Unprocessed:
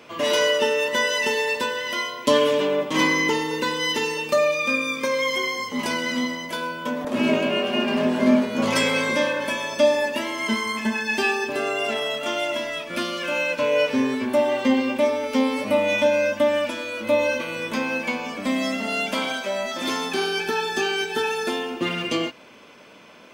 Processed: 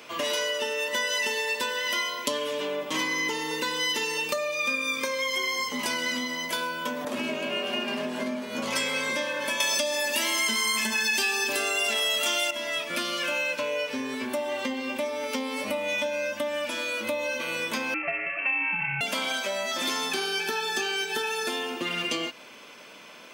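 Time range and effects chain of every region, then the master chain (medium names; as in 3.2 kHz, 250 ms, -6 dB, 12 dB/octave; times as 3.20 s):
9.60–12.51 s: treble shelf 3.1 kHz +11.5 dB + level flattener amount 50%
17.94–19.01 s: CVSD coder 64 kbps + peaking EQ 440 Hz -7.5 dB 0.66 oct + frequency inversion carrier 2.9 kHz
whole clip: high-pass 69 Hz; compression, threshold -26 dBFS; tilt EQ +2 dB/octave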